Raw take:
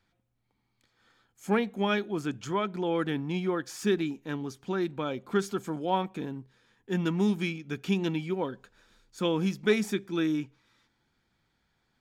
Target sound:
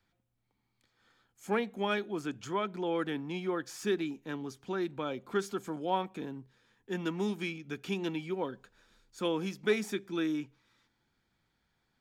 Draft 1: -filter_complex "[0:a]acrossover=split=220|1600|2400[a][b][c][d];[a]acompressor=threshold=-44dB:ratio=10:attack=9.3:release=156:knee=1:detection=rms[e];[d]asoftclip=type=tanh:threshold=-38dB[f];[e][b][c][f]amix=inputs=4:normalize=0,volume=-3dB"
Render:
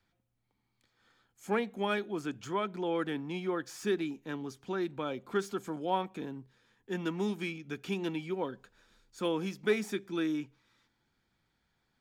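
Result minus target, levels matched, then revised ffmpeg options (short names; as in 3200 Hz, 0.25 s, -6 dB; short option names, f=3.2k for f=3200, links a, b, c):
soft clip: distortion +8 dB
-filter_complex "[0:a]acrossover=split=220|1600|2400[a][b][c][d];[a]acompressor=threshold=-44dB:ratio=10:attack=9.3:release=156:knee=1:detection=rms[e];[d]asoftclip=type=tanh:threshold=-31.5dB[f];[e][b][c][f]amix=inputs=4:normalize=0,volume=-3dB"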